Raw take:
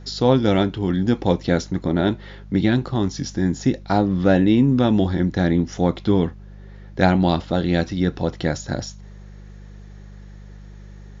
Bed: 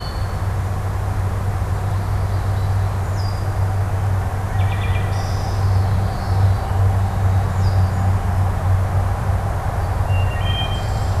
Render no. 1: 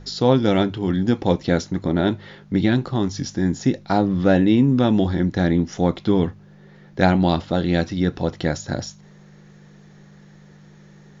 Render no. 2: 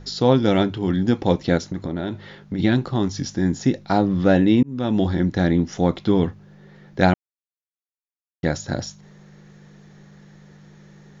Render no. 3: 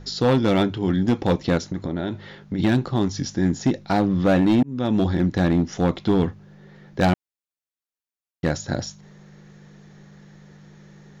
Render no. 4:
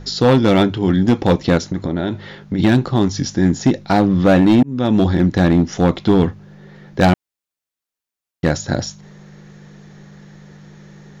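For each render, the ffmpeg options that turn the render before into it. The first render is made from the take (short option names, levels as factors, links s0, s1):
-af "bandreject=f=50:t=h:w=4,bandreject=f=100:t=h:w=4"
-filter_complex "[0:a]asplit=3[s0][s1][s2];[s0]afade=t=out:st=1.57:d=0.02[s3];[s1]acompressor=threshold=0.0794:ratio=6:attack=3.2:release=140:knee=1:detection=peak,afade=t=in:st=1.57:d=0.02,afade=t=out:st=2.58:d=0.02[s4];[s2]afade=t=in:st=2.58:d=0.02[s5];[s3][s4][s5]amix=inputs=3:normalize=0,asplit=4[s6][s7][s8][s9];[s6]atrim=end=4.63,asetpts=PTS-STARTPTS,afade=t=out:st=4.626:d=0.004:c=hsin[s10];[s7]atrim=start=4.63:end=7.14,asetpts=PTS-STARTPTS,afade=t=in:d=0.42,afade=t=out:st=2.506:d=0.004:c=hsin[s11];[s8]atrim=start=7.14:end=8.43,asetpts=PTS-STARTPTS,volume=0[s12];[s9]atrim=start=8.43,asetpts=PTS-STARTPTS,afade=t=in:d=0.004:c=hsin[s13];[s10][s11][s12][s13]concat=n=4:v=0:a=1"
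-af "volume=4.22,asoftclip=hard,volume=0.237"
-af "volume=2"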